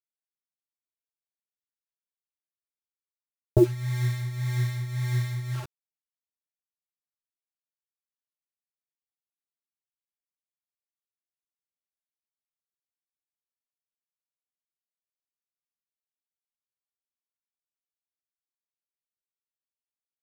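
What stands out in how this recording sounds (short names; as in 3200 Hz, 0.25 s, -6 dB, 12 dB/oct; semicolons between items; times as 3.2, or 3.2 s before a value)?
a quantiser's noise floor 6-bit, dither none; tremolo triangle 1.8 Hz, depth 70%; a shimmering, thickened sound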